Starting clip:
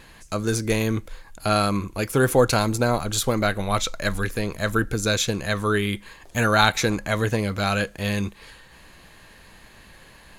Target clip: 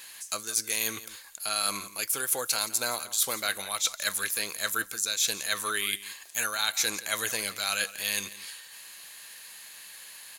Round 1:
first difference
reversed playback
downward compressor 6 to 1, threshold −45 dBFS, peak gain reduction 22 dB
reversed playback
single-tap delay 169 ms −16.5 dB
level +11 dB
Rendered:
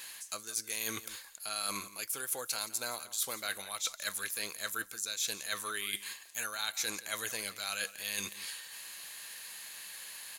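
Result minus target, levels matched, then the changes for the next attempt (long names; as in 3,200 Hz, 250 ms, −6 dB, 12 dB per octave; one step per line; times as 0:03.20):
downward compressor: peak gain reduction +8 dB
change: downward compressor 6 to 1, threshold −35.5 dBFS, peak gain reduction 14 dB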